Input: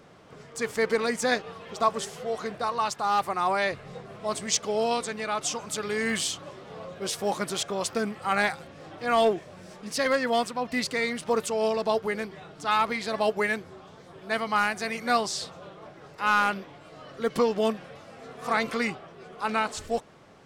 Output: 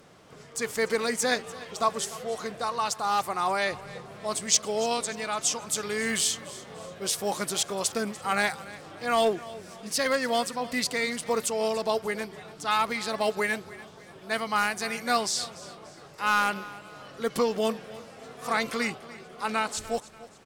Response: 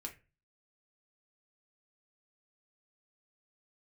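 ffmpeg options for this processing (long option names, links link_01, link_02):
-filter_complex "[0:a]aemphasis=mode=production:type=cd,asplit=2[link_01][link_02];[link_02]aecho=0:1:292|584|876:0.126|0.0504|0.0201[link_03];[link_01][link_03]amix=inputs=2:normalize=0,volume=-1.5dB"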